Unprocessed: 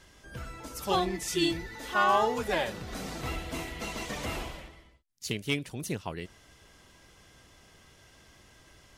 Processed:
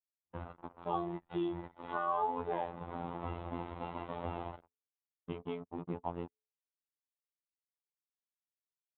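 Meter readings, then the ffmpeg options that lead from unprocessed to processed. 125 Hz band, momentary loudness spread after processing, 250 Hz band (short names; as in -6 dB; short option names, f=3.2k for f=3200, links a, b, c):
-6.5 dB, 13 LU, -6.5 dB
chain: -filter_complex "[0:a]aresample=8000,acrusher=bits=5:mix=0:aa=0.5,aresample=44100,aemphasis=mode=reproduction:type=50fm,asplit=2[a][b];[b]adelay=14,volume=-13.5dB[c];[a][c]amix=inputs=2:normalize=0,acompressor=threshold=-38dB:ratio=2.5,highpass=67,bandreject=f=221.1:t=h:w=4,bandreject=f=442.2:t=h:w=4,bandreject=f=663.3:t=h:w=4,bandreject=f=884.4:t=h:w=4,bandreject=f=1.1055k:t=h:w=4,bandreject=f=1.3266k:t=h:w=4,bandreject=f=1.5477k:t=h:w=4,bandreject=f=1.7688k:t=h:w=4,bandreject=f=1.9899k:t=h:w=4,bandreject=f=2.211k:t=h:w=4,anlmdn=0.0158,afftfilt=real='hypot(re,im)*cos(PI*b)':imag='0':win_size=2048:overlap=0.75,firequalizer=gain_entry='entry(520,0);entry(890,7);entry(1700,-11)':delay=0.05:min_phase=1,volume=3.5dB"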